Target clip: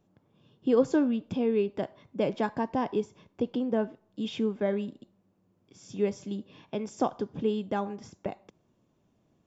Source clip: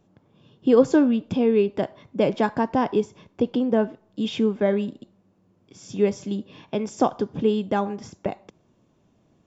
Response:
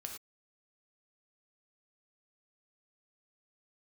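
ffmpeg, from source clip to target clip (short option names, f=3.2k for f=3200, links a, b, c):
-filter_complex "[0:a]asettb=1/sr,asplit=3[a][b][c];[a]atrim=end=2.494[d];[b]atrim=start=2.49:end=2.93,asetpts=PTS-STARTPTS,afade=t=in:d=0.004:c=qsin,afade=t=out:st=0.436:d=0.004:c=qsin,bandreject=f=1.4k:w=7.2[e];[c]atrim=start=2.926[f];[d][e]acrossfade=d=0.004:c1=hsin:c2=qsin[g];[g][f]acrossfade=d=0.004:c1=qsin:c2=hsin,volume=-7dB"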